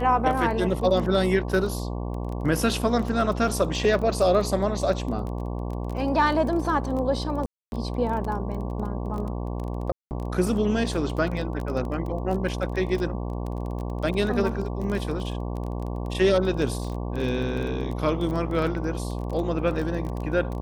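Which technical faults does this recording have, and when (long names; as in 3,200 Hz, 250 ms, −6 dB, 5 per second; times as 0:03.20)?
mains buzz 60 Hz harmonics 19 −30 dBFS
surface crackle 19 per second −30 dBFS
0:07.46–0:07.72: drop-out 261 ms
0:09.92–0:10.11: drop-out 189 ms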